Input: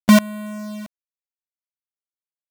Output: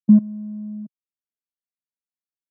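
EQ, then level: Butterworth band-pass 200 Hz, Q 1.2; 0.0 dB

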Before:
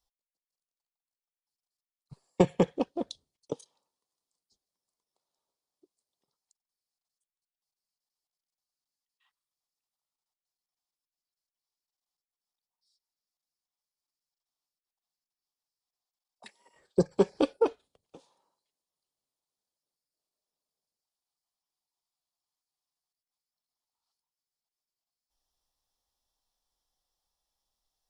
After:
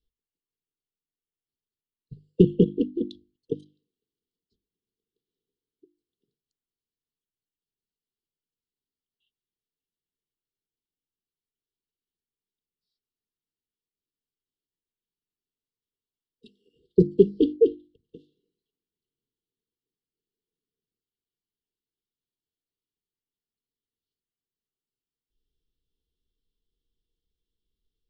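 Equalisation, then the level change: brick-wall FIR band-stop 490–2700 Hz; distance through air 480 m; hum notches 50/100/150/200/250/300/350 Hz; +9.0 dB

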